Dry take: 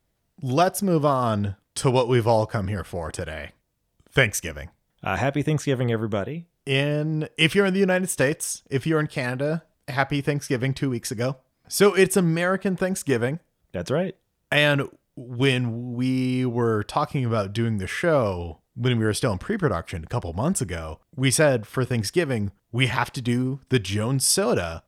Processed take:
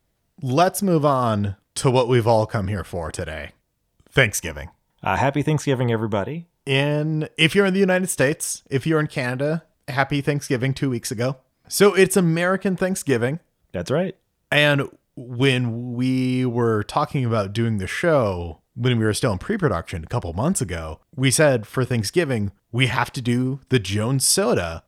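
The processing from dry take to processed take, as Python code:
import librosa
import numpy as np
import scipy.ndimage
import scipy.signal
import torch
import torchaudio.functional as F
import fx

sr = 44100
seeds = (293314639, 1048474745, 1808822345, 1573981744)

y = fx.peak_eq(x, sr, hz=910.0, db=12.5, octaves=0.21, at=(4.38, 6.99))
y = y * librosa.db_to_amplitude(2.5)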